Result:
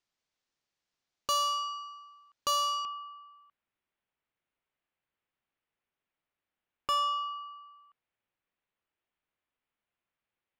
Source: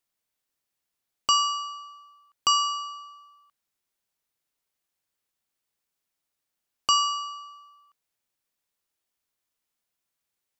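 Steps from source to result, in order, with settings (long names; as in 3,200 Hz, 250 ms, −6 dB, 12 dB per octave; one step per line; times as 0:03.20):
low-pass filter 6,500 Hz 24 dB per octave, from 0:02.85 3,000 Hz
soft clipping −25 dBFS, distortion −7 dB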